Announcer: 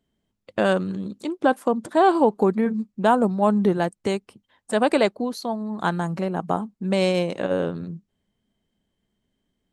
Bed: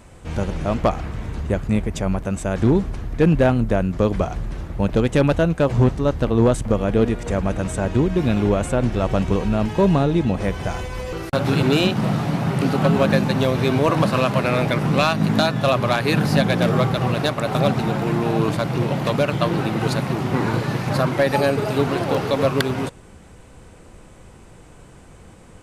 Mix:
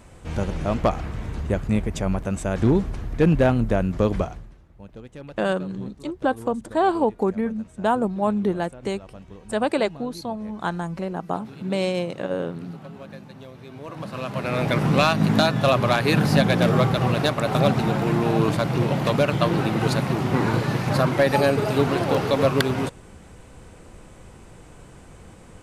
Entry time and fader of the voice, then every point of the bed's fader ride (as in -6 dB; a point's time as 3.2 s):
4.80 s, -3.0 dB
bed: 4.19 s -2 dB
4.6 s -23 dB
13.68 s -23 dB
14.76 s -0.5 dB